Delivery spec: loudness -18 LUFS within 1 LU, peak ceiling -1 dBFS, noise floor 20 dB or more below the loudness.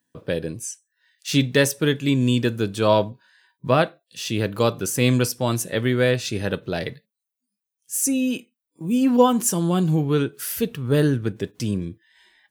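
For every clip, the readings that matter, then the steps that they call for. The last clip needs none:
loudness -22.0 LUFS; peak -3.5 dBFS; loudness target -18.0 LUFS
-> gain +4 dB; limiter -1 dBFS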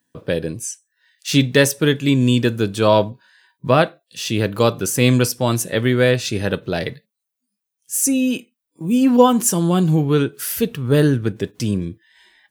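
loudness -18.0 LUFS; peak -1.0 dBFS; noise floor -81 dBFS

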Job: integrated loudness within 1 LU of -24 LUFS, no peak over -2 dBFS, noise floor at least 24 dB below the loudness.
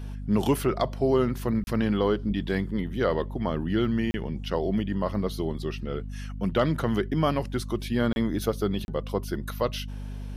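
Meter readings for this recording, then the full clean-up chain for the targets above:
dropouts 4; longest dropout 31 ms; hum 50 Hz; harmonics up to 250 Hz; hum level -33 dBFS; loudness -27.5 LUFS; peak -12.0 dBFS; loudness target -24.0 LUFS
-> interpolate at 1.64/4.11/8.13/8.85, 31 ms; notches 50/100/150/200/250 Hz; gain +3.5 dB

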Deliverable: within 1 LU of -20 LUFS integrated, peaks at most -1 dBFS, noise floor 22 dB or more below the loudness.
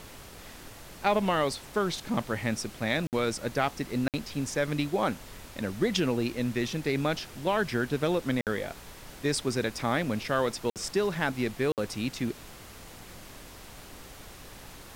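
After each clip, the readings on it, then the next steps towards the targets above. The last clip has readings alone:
dropouts 5; longest dropout 58 ms; noise floor -48 dBFS; noise floor target -52 dBFS; loudness -30.0 LUFS; peak -12.0 dBFS; loudness target -20.0 LUFS
-> interpolate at 3.07/4.08/8.41/10.7/11.72, 58 ms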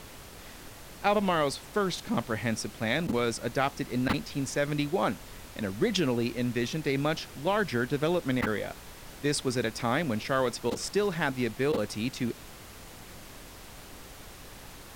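dropouts 0; noise floor -47 dBFS; noise floor target -52 dBFS
-> noise print and reduce 6 dB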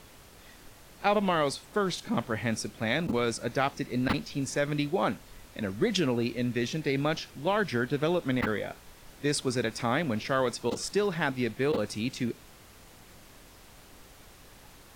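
noise floor -53 dBFS; loudness -29.5 LUFS; peak -12.0 dBFS; loudness target -20.0 LUFS
-> gain +9.5 dB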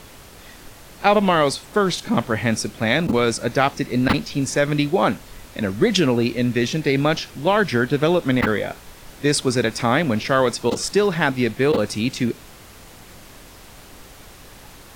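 loudness -20.0 LUFS; peak -2.5 dBFS; noise floor -44 dBFS

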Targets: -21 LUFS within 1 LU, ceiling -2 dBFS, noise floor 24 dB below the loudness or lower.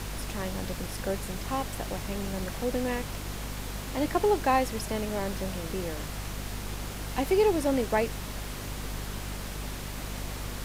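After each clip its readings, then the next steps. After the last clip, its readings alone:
hum 50 Hz; harmonics up to 250 Hz; hum level -36 dBFS; noise floor -38 dBFS; noise floor target -56 dBFS; loudness -31.5 LUFS; peak -13.0 dBFS; loudness target -21.0 LUFS
-> notches 50/100/150/200/250 Hz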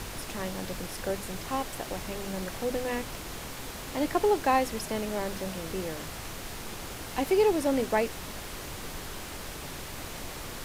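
hum none; noise floor -40 dBFS; noise floor target -56 dBFS
-> noise print and reduce 16 dB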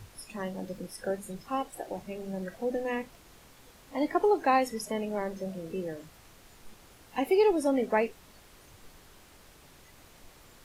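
noise floor -56 dBFS; loudness -31.0 LUFS; peak -13.0 dBFS; loudness target -21.0 LUFS
-> gain +10 dB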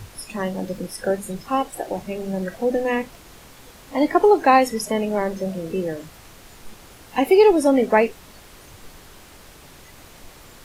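loudness -21.0 LUFS; peak -3.0 dBFS; noise floor -46 dBFS

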